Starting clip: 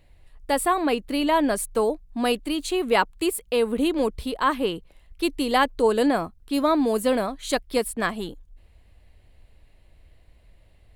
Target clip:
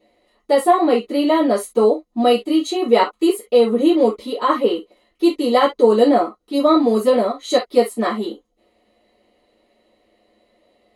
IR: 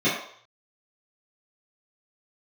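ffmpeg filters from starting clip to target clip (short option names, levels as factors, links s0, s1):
-filter_complex "[1:a]atrim=start_sample=2205,afade=t=out:st=0.19:d=0.01,atrim=end_sample=8820,asetrate=79380,aresample=44100[s0];[0:a][s0]afir=irnorm=-1:irlink=0,volume=0.398"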